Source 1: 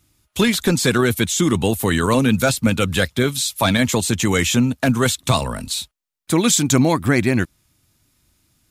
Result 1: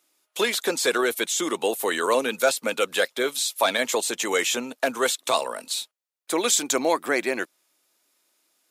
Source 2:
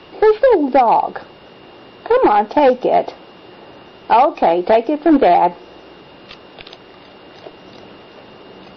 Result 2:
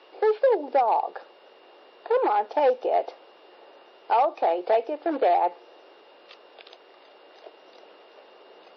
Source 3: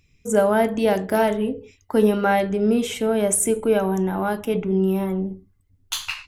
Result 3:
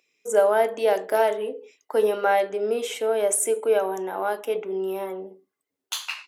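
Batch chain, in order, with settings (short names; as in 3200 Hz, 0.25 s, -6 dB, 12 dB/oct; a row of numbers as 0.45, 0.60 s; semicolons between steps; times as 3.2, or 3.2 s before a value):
ladder high-pass 370 Hz, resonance 30%; match loudness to -24 LUFS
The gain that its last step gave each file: +3.0, -5.0, +4.0 dB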